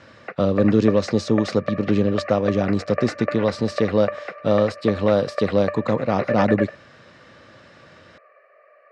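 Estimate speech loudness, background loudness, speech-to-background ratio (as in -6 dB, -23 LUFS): -21.5 LUFS, -31.0 LUFS, 9.5 dB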